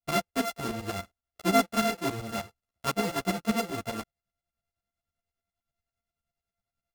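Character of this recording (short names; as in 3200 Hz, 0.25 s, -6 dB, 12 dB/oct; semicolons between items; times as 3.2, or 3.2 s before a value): a buzz of ramps at a fixed pitch in blocks of 64 samples; tremolo saw up 10 Hz, depth 85%; a shimmering, thickened sound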